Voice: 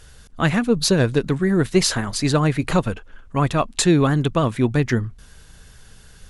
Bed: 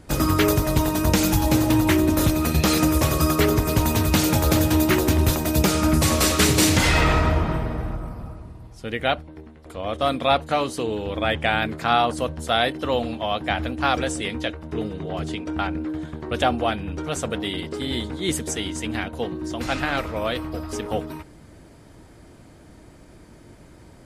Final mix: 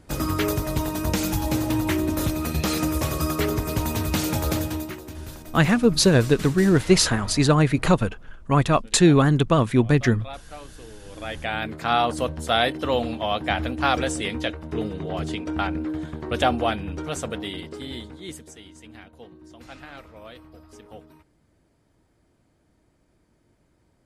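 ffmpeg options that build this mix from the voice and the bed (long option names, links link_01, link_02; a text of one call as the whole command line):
ffmpeg -i stem1.wav -i stem2.wav -filter_complex "[0:a]adelay=5150,volume=0.5dB[link_01];[1:a]volume=14dB,afade=type=out:start_time=4.49:duration=0.48:silence=0.199526,afade=type=in:start_time=11.01:duration=1.2:silence=0.112202,afade=type=out:start_time=16.59:duration=1.92:silence=0.133352[link_02];[link_01][link_02]amix=inputs=2:normalize=0" out.wav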